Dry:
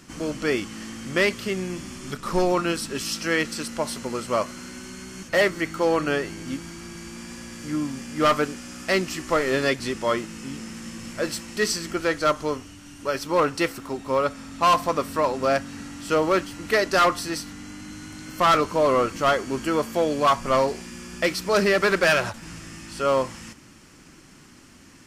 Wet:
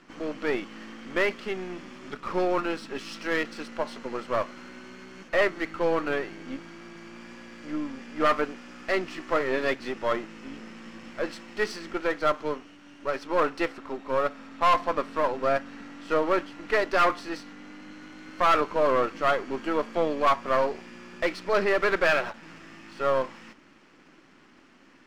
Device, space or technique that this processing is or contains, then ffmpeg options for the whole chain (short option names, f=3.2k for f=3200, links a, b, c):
crystal radio: -af "highpass=260,lowpass=2.9k,aeval=exprs='if(lt(val(0),0),0.447*val(0),val(0))':c=same"